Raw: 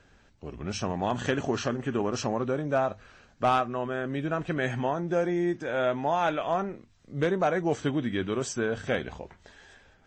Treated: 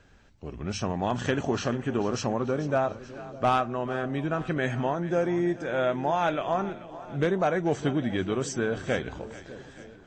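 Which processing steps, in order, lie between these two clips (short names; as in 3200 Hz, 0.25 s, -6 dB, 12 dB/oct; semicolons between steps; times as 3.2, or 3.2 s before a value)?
low shelf 200 Hz +3 dB; on a send: split-band echo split 600 Hz, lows 0.604 s, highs 0.436 s, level -15.5 dB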